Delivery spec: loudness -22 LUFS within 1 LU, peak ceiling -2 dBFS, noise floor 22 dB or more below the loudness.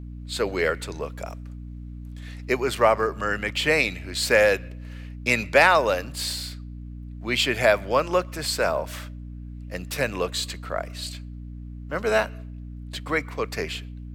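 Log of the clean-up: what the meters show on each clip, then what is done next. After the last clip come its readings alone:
hum 60 Hz; harmonics up to 300 Hz; hum level -35 dBFS; loudness -24.0 LUFS; peak -4.5 dBFS; loudness target -22.0 LUFS
-> de-hum 60 Hz, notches 5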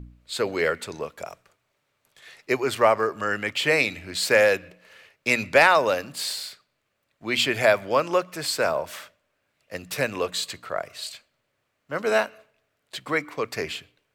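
hum none; loudness -24.0 LUFS; peak -5.0 dBFS; loudness target -22.0 LUFS
-> gain +2 dB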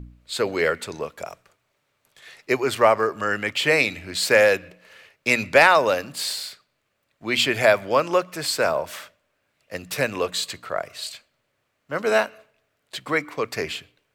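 loudness -22.0 LUFS; peak -3.0 dBFS; noise floor -73 dBFS

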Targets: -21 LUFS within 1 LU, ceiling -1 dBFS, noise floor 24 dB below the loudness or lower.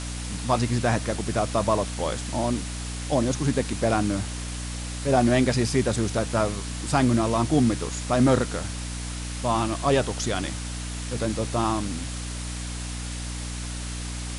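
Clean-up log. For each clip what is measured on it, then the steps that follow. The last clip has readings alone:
hum 60 Hz; harmonics up to 300 Hz; hum level -31 dBFS; noise floor -33 dBFS; noise floor target -50 dBFS; loudness -26.0 LUFS; peak -9.5 dBFS; loudness target -21.0 LUFS
-> de-hum 60 Hz, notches 5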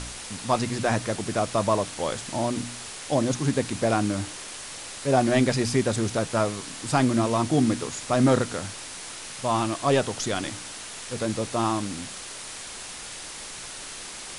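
hum none; noise floor -39 dBFS; noise floor target -51 dBFS
-> denoiser 12 dB, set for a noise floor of -39 dBFS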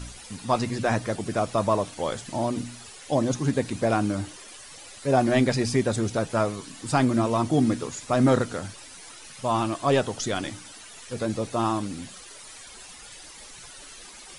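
noise floor -45 dBFS; noise floor target -50 dBFS
-> denoiser 6 dB, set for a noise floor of -45 dBFS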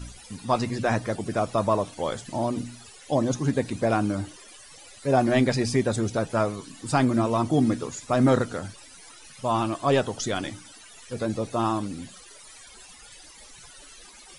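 noise floor -48 dBFS; noise floor target -50 dBFS
-> denoiser 6 dB, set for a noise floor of -48 dBFS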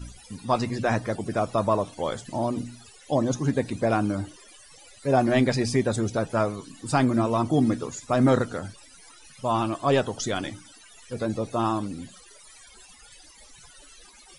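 noise floor -51 dBFS; loudness -25.5 LUFS; peak -9.5 dBFS; loudness target -21.0 LUFS
-> gain +4.5 dB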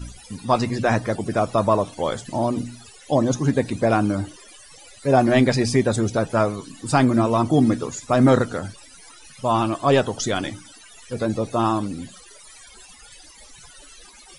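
loudness -21.0 LUFS; peak -5.0 dBFS; noise floor -47 dBFS

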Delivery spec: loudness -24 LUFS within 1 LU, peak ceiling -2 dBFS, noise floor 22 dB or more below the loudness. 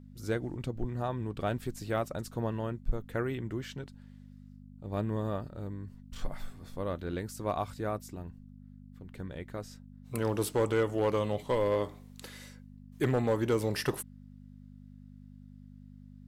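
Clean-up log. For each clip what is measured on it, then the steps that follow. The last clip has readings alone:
clipped 0.3%; flat tops at -20.5 dBFS; hum 50 Hz; harmonics up to 250 Hz; hum level -49 dBFS; loudness -34.0 LUFS; peak -20.5 dBFS; loudness target -24.0 LUFS
-> clip repair -20.5 dBFS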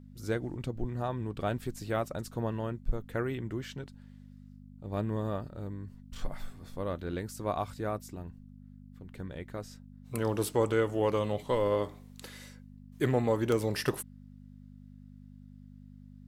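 clipped 0.0%; hum 50 Hz; harmonics up to 250 Hz; hum level -49 dBFS
-> de-hum 50 Hz, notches 5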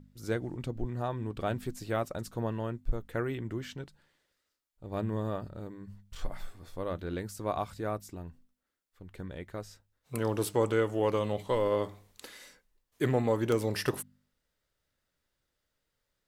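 hum none; loudness -33.5 LUFS; peak -13.0 dBFS; loudness target -24.0 LUFS
-> gain +9.5 dB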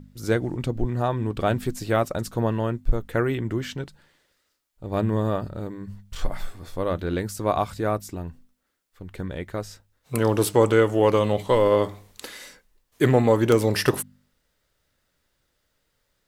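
loudness -24.0 LUFS; peak -3.5 dBFS; noise floor -73 dBFS

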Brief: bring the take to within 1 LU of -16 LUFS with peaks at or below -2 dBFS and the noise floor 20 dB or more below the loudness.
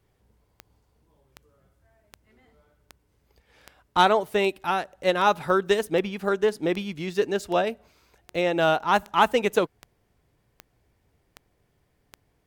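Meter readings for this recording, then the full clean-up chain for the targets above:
clicks 16; loudness -24.0 LUFS; peak -5.5 dBFS; loudness target -16.0 LUFS
-> de-click; gain +8 dB; limiter -2 dBFS

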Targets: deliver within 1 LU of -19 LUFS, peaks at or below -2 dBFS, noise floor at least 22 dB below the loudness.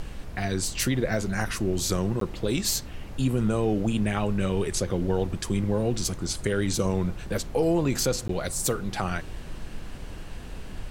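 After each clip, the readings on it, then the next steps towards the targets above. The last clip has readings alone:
dropouts 2; longest dropout 13 ms; noise floor -39 dBFS; noise floor target -49 dBFS; loudness -27.0 LUFS; peak -10.0 dBFS; loudness target -19.0 LUFS
-> interpolate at 2.2/8.28, 13 ms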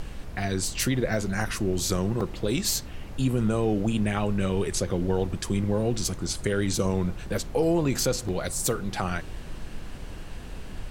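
dropouts 0; noise floor -39 dBFS; noise floor target -49 dBFS
-> noise print and reduce 10 dB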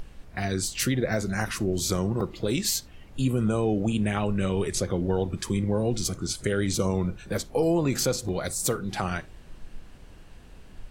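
noise floor -48 dBFS; noise floor target -49 dBFS
-> noise print and reduce 6 dB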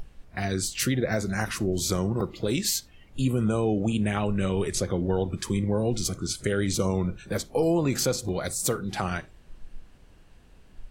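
noise floor -54 dBFS; loudness -27.0 LUFS; peak -10.5 dBFS; loudness target -19.0 LUFS
-> gain +8 dB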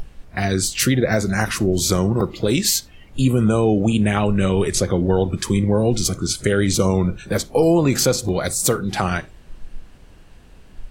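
loudness -19.0 LUFS; peak -2.5 dBFS; noise floor -46 dBFS

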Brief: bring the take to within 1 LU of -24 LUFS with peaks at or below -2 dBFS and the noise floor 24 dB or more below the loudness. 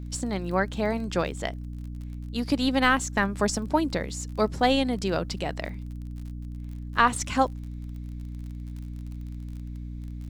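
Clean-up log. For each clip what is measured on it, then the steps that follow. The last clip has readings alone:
ticks 37/s; hum 60 Hz; harmonics up to 300 Hz; hum level -34 dBFS; loudness -26.5 LUFS; peak -5.0 dBFS; loudness target -24.0 LUFS
-> de-click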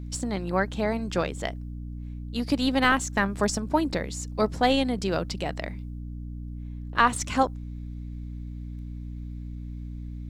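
ticks 0.097/s; hum 60 Hz; harmonics up to 300 Hz; hum level -34 dBFS
-> notches 60/120/180/240/300 Hz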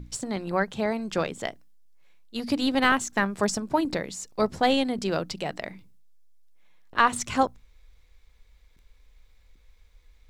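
hum none; loudness -26.5 LUFS; peak -5.0 dBFS; loudness target -24.0 LUFS
-> gain +2.5 dB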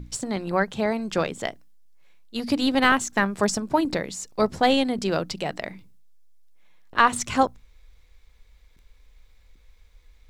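loudness -24.5 LUFS; peak -2.5 dBFS; noise floor -56 dBFS

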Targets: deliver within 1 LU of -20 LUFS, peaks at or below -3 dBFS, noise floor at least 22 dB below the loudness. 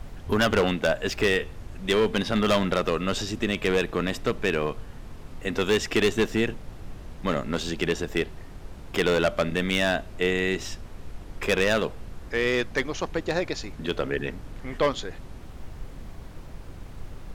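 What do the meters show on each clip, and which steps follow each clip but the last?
clipped 1.0%; flat tops at -16.0 dBFS; noise floor -42 dBFS; noise floor target -48 dBFS; loudness -26.0 LUFS; peak -16.0 dBFS; loudness target -20.0 LUFS
-> clip repair -16 dBFS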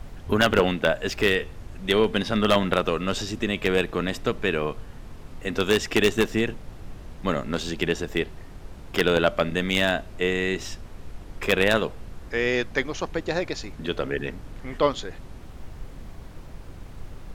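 clipped 0.0%; noise floor -42 dBFS; noise floor target -47 dBFS
-> noise print and reduce 6 dB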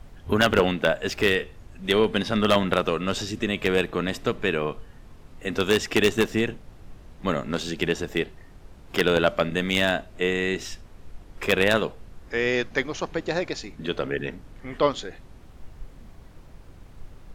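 noise floor -48 dBFS; loudness -25.0 LUFS; peak -7.0 dBFS; loudness target -20.0 LUFS
-> gain +5 dB; limiter -3 dBFS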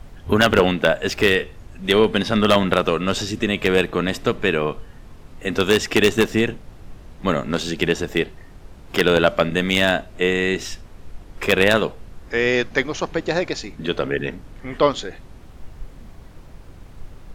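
loudness -20.0 LUFS; peak -3.0 dBFS; noise floor -43 dBFS

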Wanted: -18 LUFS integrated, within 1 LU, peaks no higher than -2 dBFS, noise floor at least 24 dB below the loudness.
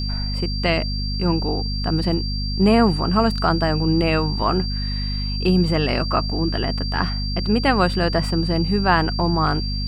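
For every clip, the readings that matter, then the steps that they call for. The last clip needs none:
hum 50 Hz; harmonics up to 250 Hz; hum level -22 dBFS; steady tone 4700 Hz; tone level -29 dBFS; loudness -20.5 LUFS; peak -2.5 dBFS; loudness target -18.0 LUFS
-> de-hum 50 Hz, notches 5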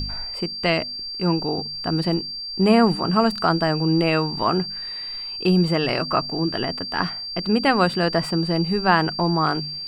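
hum none; steady tone 4700 Hz; tone level -29 dBFS
-> notch 4700 Hz, Q 30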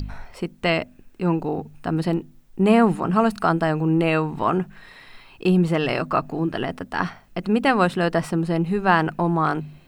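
steady tone none; loudness -22.0 LUFS; peak -4.0 dBFS; loudness target -18.0 LUFS
-> gain +4 dB; limiter -2 dBFS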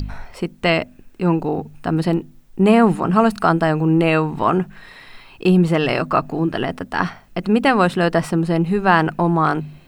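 loudness -18.0 LUFS; peak -2.0 dBFS; noise floor -47 dBFS

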